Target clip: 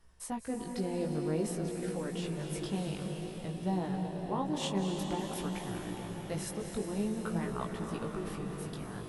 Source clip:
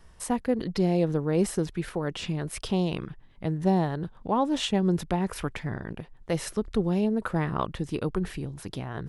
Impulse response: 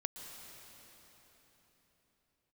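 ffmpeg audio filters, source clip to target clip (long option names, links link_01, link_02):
-filter_complex "[1:a]atrim=start_sample=2205,asetrate=26901,aresample=44100[link_01];[0:a][link_01]afir=irnorm=-1:irlink=0,flanger=delay=16.5:depth=4.1:speed=0.52,asetnsamples=nb_out_samples=441:pad=0,asendcmd='4.55 highshelf g 12',highshelf=frequency=8200:gain=6,volume=-7.5dB"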